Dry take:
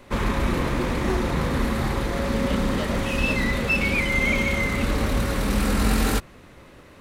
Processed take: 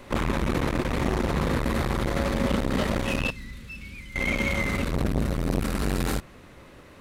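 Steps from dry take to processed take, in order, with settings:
0:04.93–0:05.62: low-shelf EQ 340 Hz +7.5 dB
speech leveller 0.5 s
0:03.30–0:04.16: guitar amp tone stack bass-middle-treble 6-0-2
saturating transformer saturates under 410 Hz

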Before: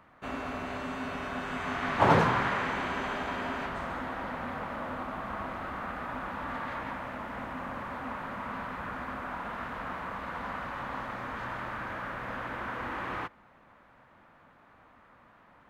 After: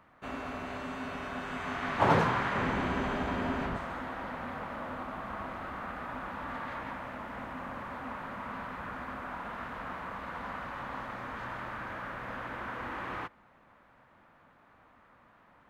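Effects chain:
0:02.55–0:03.77: low-shelf EQ 430 Hz +10.5 dB
level −2.5 dB

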